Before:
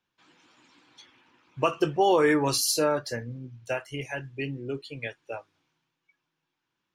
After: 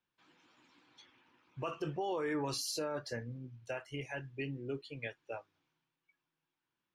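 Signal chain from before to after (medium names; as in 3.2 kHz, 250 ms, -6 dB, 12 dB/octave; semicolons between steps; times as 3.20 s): treble shelf 8.8 kHz -12 dB; peak limiter -22 dBFS, peak gain reduction 10 dB; trim -6.5 dB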